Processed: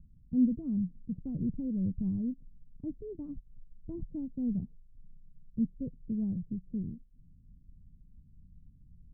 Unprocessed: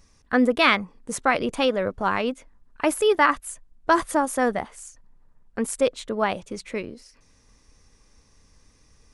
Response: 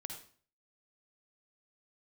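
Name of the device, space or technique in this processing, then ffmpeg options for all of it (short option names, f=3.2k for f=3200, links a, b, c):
the neighbour's flat through the wall: -af "lowpass=f=200:w=0.5412,lowpass=f=200:w=1.3066,equalizer=f=160:t=o:w=0.61:g=6,volume=2.5dB"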